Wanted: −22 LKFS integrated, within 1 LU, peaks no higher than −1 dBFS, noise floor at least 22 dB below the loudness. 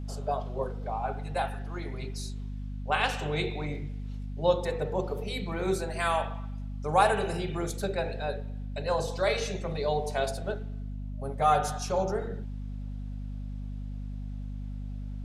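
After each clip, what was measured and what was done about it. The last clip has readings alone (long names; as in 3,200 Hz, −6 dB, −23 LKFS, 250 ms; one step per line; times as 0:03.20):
mains hum 50 Hz; hum harmonics up to 250 Hz; level of the hum −34 dBFS; integrated loudness −31.5 LKFS; sample peak −9.0 dBFS; target loudness −22.0 LKFS
→ hum removal 50 Hz, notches 5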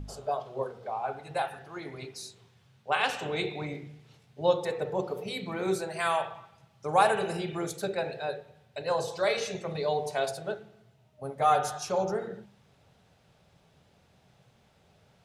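mains hum none found; integrated loudness −31.0 LKFS; sample peak −9.0 dBFS; target loudness −22.0 LKFS
→ level +9 dB
brickwall limiter −1 dBFS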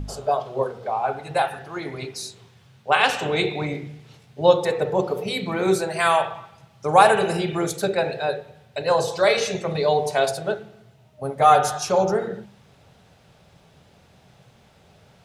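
integrated loudness −22.0 LKFS; sample peak −1.0 dBFS; background noise floor −55 dBFS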